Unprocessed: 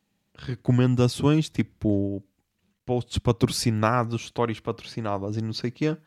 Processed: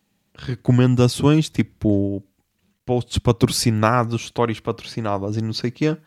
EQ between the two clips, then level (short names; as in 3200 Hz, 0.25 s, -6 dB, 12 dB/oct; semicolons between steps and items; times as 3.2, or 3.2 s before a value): high shelf 8900 Hz +4 dB; +5.0 dB